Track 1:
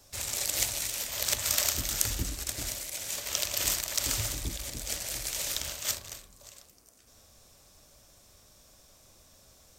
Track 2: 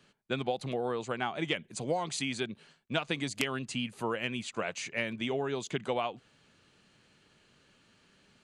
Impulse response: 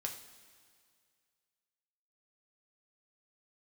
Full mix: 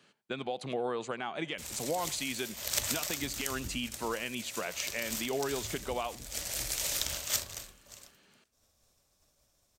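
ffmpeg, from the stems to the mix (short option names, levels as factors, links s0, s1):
-filter_complex "[0:a]agate=range=0.0224:threshold=0.00398:ratio=3:detection=peak,adelay=1450,volume=0.944,asplit=2[s0][s1];[s1]volume=0.119[s2];[1:a]highpass=f=230:p=1,alimiter=limit=0.0631:level=0:latency=1:release=138,volume=1.12,asplit=3[s3][s4][s5];[s4]volume=0.0841[s6];[s5]apad=whole_len=495423[s7];[s0][s7]sidechaincompress=threshold=0.00631:ratio=8:attack=20:release=453[s8];[2:a]atrim=start_sample=2205[s9];[s2][s9]afir=irnorm=-1:irlink=0[s10];[s6]aecho=0:1:86:1[s11];[s8][s3][s10][s11]amix=inputs=4:normalize=0"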